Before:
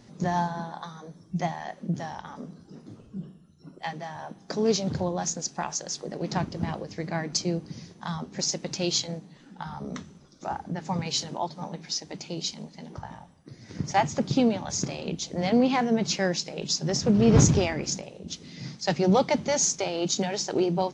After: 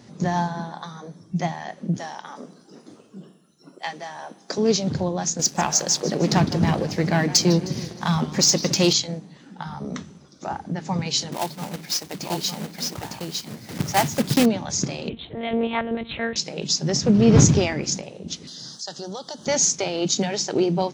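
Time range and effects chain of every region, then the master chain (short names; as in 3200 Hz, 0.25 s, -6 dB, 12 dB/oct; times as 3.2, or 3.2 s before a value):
1.97–4.58 HPF 310 Hz + high shelf 7300 Hz +8 dB
5.39–8.93 sample leveller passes 2 + warbling echo 0.155 s, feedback 51%, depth 195 cents, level -15.5 dB
11.32–14.47 block floating point 3-bit + echo 0.905 s -3.5 dB
15.09–16.36 low shelf 460 Hz -4.5 dB + monotone LPC vocoder at 8 kHz 230 Hz
18.47–19.47 Chebyshev band-stop 1600–3300 Hz + RIAA curve recording + compressor 2.5:1, threshold -40 dBFS
whole clip: dynamic EQ 840 Hz, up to -3 dB, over -39 dBFS, Q 0.72; HPF 78 Hz; gain +5 dB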